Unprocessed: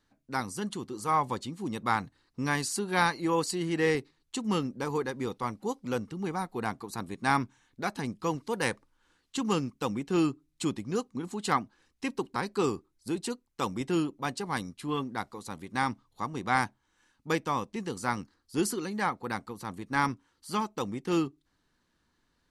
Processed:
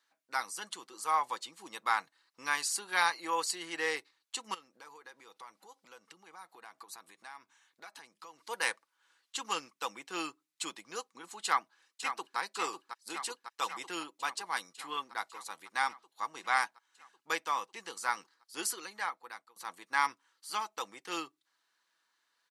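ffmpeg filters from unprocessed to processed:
-filter_complex "[0:a]asettb=1/sr,asplit=3[a][b][c];[a]atrim=end=4.544[d];[b]atrim=start=4.54:end=8.39,asetpts=PTS-STARTPTS,afade=t=in:d=0.004:c=qsin,afade=t=out:st=3.846:d=0.004:c=qsin,acompressor=threshold=-41dB:ratio=10:attack=3.2:release=140:knee=1:detection=peak[e];[c]atrim=start=8.386[f];[d][e]acrossfade=d=0.004:c1=hsin:c2=qsin[g];[g][f]acrossfade=d=0.004:c1=qsin:c2=hsin,asplit=2[h][i];[i]afade=t=in:st=11.44:d=0.01,afade=t=out:st=12.38:d=0.01,aecho=0:1:550|1100|1650|2200|2750|3300|3850|4400|4950|5500|6050|6600:0.398107|0.29858|0.223935|0.167951|0.125964|0.0944727|0.0708545|0.0531409|0.0398557|0.0298918|0.0224188|0.0168141[j];[h][j]amix=inputs=2:normalize=0,asplit=2[k][l];[k]atrim=end=19.56,asetpts=PTS-STARTPTS,afade=t=out:st=18.7:d=0.86:silence=0.112202[m];[l]atrim=start=19.56,asetpts=PTS-STARTPTS,afade=t=in:d=0.004:c=hsin:silence=0.112202[n];[m][n]concat=n=2:v=0:a=1,highpass=920,aecho=1:1:6.1:0.3"

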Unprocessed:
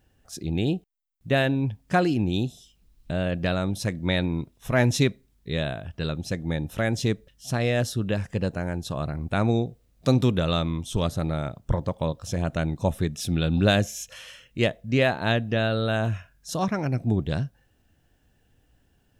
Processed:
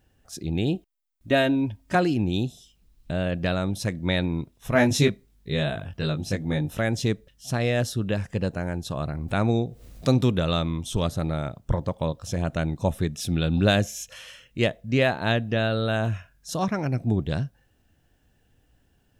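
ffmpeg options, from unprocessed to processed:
-filter_complex "[0:a]asettb=1/sr,asplit=3[a][b][c];[a]atrim=end=0.754[d];[b]atrim=start=0.75:end=1.95,asetpts=PTS-STARTPTS,afade=t=in:d=0.004:c=qsin,afade=t=out:st=1.196:d=0.004:c=qsin,aecho=1:1:3.2:0.65,atrim=end_sample=52920[e];[c]atrim=start=1.946[f];[d][e]acrossfade=d=0.004:c1=hsin:c2=qsin[g];[g][f]acrossfade=d=0.004:c1=qsin:c2=hsin,asettb=1/sr,asplit=3[h][i][j];[h]atrim=end=4.734[k];[i]atrim=start=4.73:end=6.78,asetpts=PTS-STARTPTS,afade=t=in:d=0.004:c=qsin,afade=t=out:st=2.046:d=0.004:c=qsin,asplit=2[l][m];[m]adelay=20,volume=-3dB[n];[l][n]amix=inputs=2:normalize=0,atrim=end_sample=90405[o];[j]atrim=start=6.776[p];[k][o]acrossfade=d=0.004:c1=hsin:c2=qsin[q];[q][p]acrossfade=d=0.004:c1=qsin:c2=hsin,asettb=1/sr,asplit=3[r][s][t];[r]atrim=end=9.284[u];[s]atrim=start=9.28:end=11.1,asetpts=PTS-STARTPTS,afade=t=in:d=0.004:c=qsin,afade=t=out:st=1.816:d=0.004:c=qsin,acompressor=mode=upward:threshold=-28dB:ratio=2.5:attack=3.2:release=140:knee=2.83:detection=peak[v];[t]atrim=start=11.096[w];[u][v]acrossfade=d=0.004:c1=hsin:c2=qsin[x];[x][w]acrossfade=d=0.004:c1=qsin:c2=hsin"

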